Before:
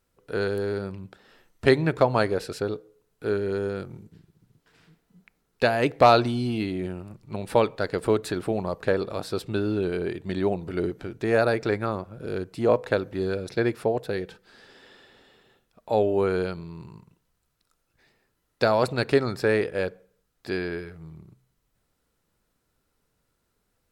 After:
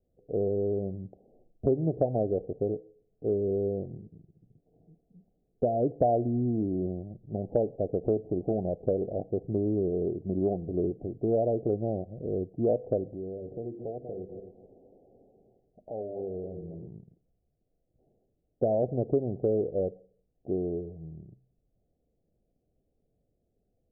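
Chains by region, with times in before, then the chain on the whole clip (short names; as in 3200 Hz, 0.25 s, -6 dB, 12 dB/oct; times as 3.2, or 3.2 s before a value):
13.1–16.87 regenerating reverse delay 0.13 s, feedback 41%, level -11 dB + notches 50/100/150/200/250/300/350/400 Hz + compressor 2.5:1, threshold -38 dBFS
whole clip: steep low-pass 750 Hz 96 dB/oct; compressor 2.5:1, threshold -24 dBFS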